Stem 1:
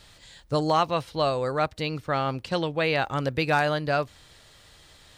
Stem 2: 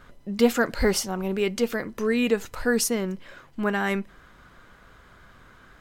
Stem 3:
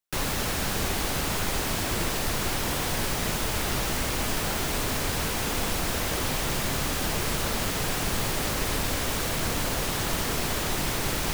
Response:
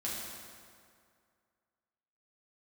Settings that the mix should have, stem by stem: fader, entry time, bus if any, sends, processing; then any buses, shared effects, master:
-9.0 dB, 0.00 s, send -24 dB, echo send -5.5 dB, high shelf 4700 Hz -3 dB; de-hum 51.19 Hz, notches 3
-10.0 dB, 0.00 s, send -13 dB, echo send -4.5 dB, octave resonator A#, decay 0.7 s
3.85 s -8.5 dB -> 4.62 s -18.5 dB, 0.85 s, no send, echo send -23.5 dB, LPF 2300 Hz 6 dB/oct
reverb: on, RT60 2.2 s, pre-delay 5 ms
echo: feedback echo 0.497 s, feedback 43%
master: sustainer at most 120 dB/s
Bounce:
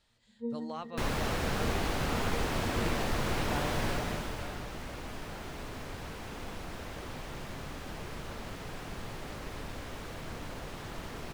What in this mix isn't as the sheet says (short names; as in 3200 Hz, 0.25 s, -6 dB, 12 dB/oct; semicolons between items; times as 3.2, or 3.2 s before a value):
stem 1 -9.0 dB -> -19.0 dB; stem 3 -8.5 dB -> -2.0 dB; master: missing sustainer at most 120 dB/s